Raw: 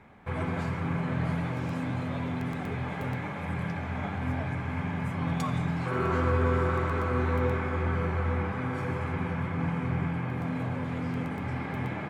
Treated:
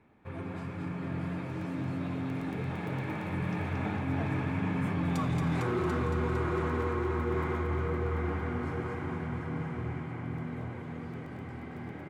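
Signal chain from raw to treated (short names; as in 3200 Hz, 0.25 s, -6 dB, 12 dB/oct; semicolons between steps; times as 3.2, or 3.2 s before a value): Doppler pass-by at 5.35, 16 m/s, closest 4.9 m; bell 110 Hz +3 dB 1.9 oct; thinning echo 0.227 s, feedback 52%, high-pass 820 Hz, level -3.5 dB; in parallel at +2.5 dB: limiter -28 dBFS, peak gain reduction 10.5 dB; on the sum: bell 340 Hz +8 dB 0.72 oct; echo 0.74 s -8 dB; hard clip -17.5 dBFS, distortion -22 dB; reverse; compressor 10:1, threshold -33 dBFS, peak gain reduction 13 dB; reverse; gain +6 dB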